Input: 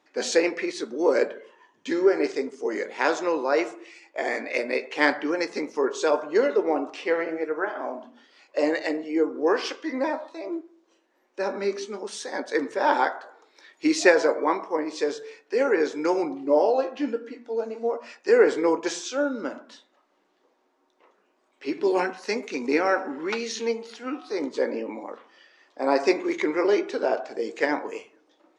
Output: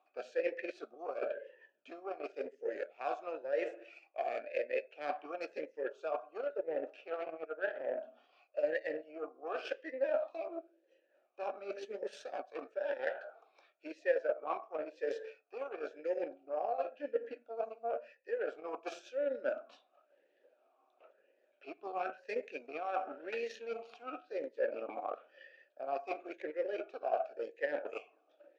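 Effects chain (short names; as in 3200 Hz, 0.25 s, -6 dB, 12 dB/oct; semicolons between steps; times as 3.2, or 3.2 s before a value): transient shaper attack +1 dB, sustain -4 dB; reverse; compressor 12:1, threshold -35 dBFS, peak gain reduction 24.5 dB; reverse; added harmonics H 3 -20 dB, 6 -36 dB, 7 -28 dB, 8 -30 dB, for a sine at -22 dBFS; vowel sweep a-e 0.96 Hz; gain +14.5 dB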